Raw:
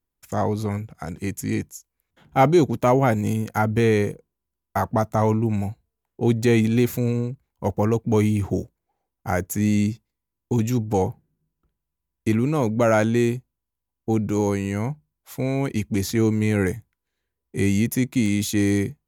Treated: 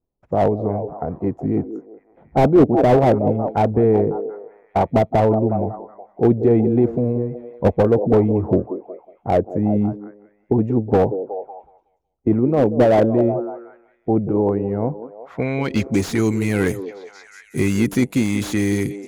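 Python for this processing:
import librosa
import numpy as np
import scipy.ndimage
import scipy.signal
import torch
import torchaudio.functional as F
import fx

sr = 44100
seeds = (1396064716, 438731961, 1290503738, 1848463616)

p1 = fx.hpss(x, sr, part='percussive', gain_db=7)
p2 = fx.filter_sweep_lowpass(p1, sr, from_hz=630.0, to_hz=11000.0, start_s=15.01, end_s=16.11, q=1.7)
p3 = p2 + fx.echo_stepped(p2, sr, ms=184, hz=380.0, octaves=0.7, feedback_pct=70, wet_db=-8.0, dry=0)
y = fx.slew_limit(p3, sr, full_power_hz=160.0)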